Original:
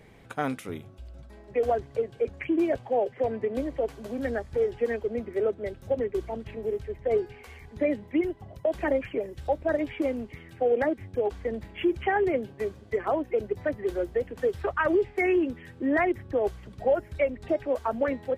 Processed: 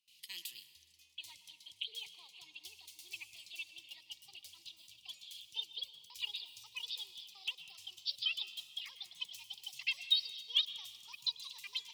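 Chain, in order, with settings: speed glide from 129% -> 179%; inverse Chebyshev high-pass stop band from 1600 Hz, stop band 40 dB; gate with hold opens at -57 dBFS; reverb RT60 2.0 s, pre-delay 0.103 s, DRR 12 dB; gain +3 dB

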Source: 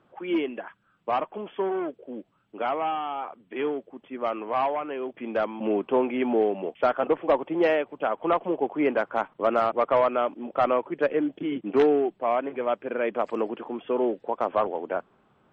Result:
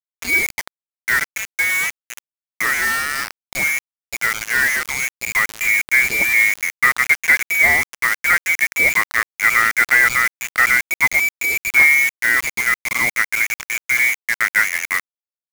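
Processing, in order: inverted band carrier 2600 Hz; bit-crush 5-bit; gain +7.5 dB

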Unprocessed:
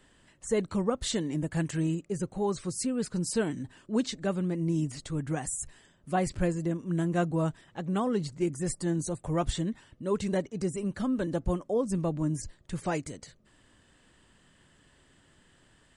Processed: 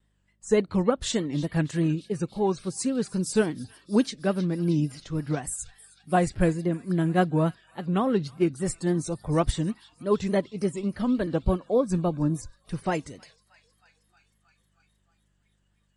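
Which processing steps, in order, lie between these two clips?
on a send: thin delay 0.314 s, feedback 80%, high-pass 1800 Hz, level -14.5 dB; on the sum: buzz 50 Hz, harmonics 4, -55 dBFS -4 dB/oct; vibrato 3.5 Hz 90 cents; spectral noise reduction 15 dB; upward expander 1.5:1, over -38 dBFS; gain +6.5 dB

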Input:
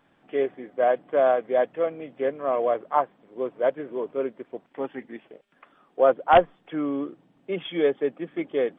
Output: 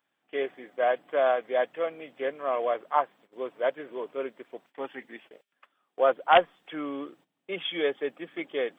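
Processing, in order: gate -49 dBFS, range -14 dB; tilt +3.5 dB/oct; gain -1.5 dB

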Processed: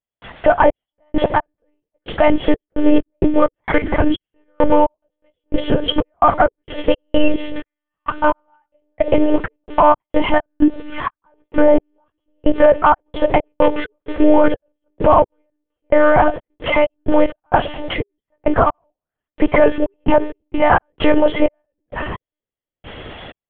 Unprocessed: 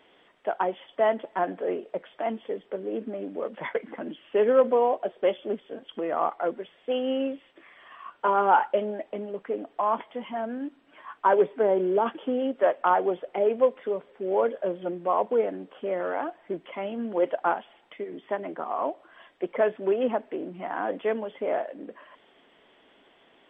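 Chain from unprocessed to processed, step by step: on a send: analogue delay 0.316 s, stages 1024, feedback 68%, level -21 dB; on the sum: step gate ".xx..x...xx.x.x" 65 bpm -60 dB; monotone LPC vocoder at 8 kHz 300 Hz; in parallel at -0.5 dB: compressor, threshold -36 dBFS, peak gain reduction 17.5 dB; on the sum: vibrato 1 Hz 12 cents; maximiser +20 dB; gain -1 dB

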